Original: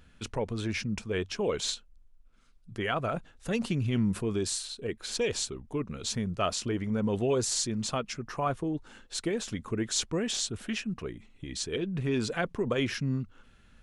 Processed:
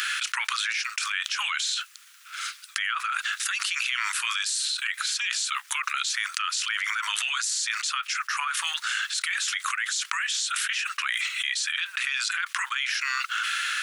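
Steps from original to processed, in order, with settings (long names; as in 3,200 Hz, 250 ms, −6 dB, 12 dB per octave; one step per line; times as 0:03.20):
Butterworth high-pass 1,300 Hz 48 dB per octave
envelope flattener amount 100%
level −1 dB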